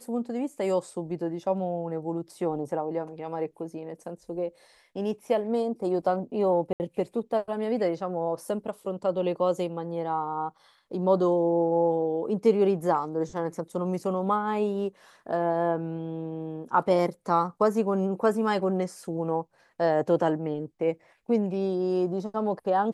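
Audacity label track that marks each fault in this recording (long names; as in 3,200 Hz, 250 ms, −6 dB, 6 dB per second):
6.730000	6.800000	drop-out 69 ms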